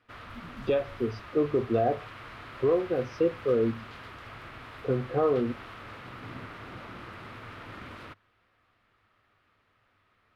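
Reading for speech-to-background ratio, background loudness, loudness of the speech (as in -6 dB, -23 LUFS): 15.5 dB, -44.0 LUFS, -28.5 LUFS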